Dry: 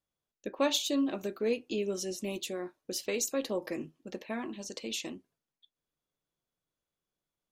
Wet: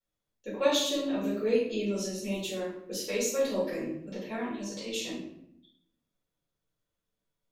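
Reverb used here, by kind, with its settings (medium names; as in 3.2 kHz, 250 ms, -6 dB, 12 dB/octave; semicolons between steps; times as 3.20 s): simulated room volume 160 m³, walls mixed, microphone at 4.4 m; trim -11 dB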